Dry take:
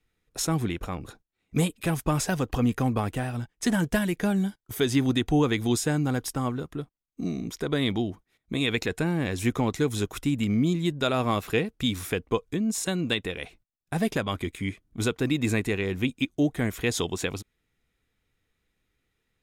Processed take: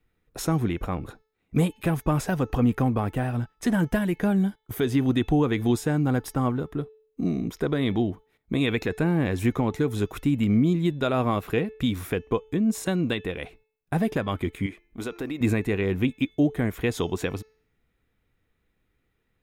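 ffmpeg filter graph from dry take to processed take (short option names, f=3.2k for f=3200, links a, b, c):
-filter_complex "[0:a]asettb=1/sr,asplit=3[a][b][c];[a]atrim=end=14.664[d];[b]atrim=start=14.66:end=15.41,asetpts=PTS-STARTPTS,afade=t=in:d=0.004:c=qsin,afade=t=out:st=0.746:d=0.004:c=qsin,equalizer=f=110:w=0.84:g=-13,bandreject=f=345.8:t=h:w=4,bandreject=f=691.6:t=h:w=4,bandreject=f=1.0374k:t=h:w=4,bandreject=f=1.3832k:t=h:w=4,bandreject=f=1.729k:t=h:w=4,bandreject=f=2.0748k:t=h:w=4,bandreject=f=2.4206k:t=h:w=4,acompressor=threshold=-33dB:ratio=3:attack=3.2:release=140:knee=1:detection=peak[e];[c]atrim=start=15.406[f];[d][e]acrossfade=d=0.004:c1=hsin:c2=qsin[g];[g][f]acrossfade=d=0.004:c1=qsin:c2=hsin,equalizer=f=6.5k:t=o:w=2.3:g=-11,alimiter=limit=-17.5dB:level=0:latency=1:release=379,bandreject=f=435.5:t=h:w=4,bandreject=f=871:t=h:w=4,bandreject=f=1.3065k:t=h:w=4,bandreject=f=1.742k:t=h:w=4,bandreject=f=2.1775k:t=h:w=4,bandreject=f=2.613k:t=h:w=4,bandreject=f=3.0485k:t=h:w=4,bandreject=f=3.484k:t=h:w=4,bandreject=f=3.9195k:t=h:w=4,bandreject=f=4.355k:t=h:w=4,bandreject=f=4.7905k:t=h:w=4,bandreject=f=5.226k:t=h:w=4,bandreject=f=5.6615k:t=h:w=4,bandreject=f=6.097k:t=h:w=4,bandreject=f=6.5325k:t=h:w=4,volume=4.5dB"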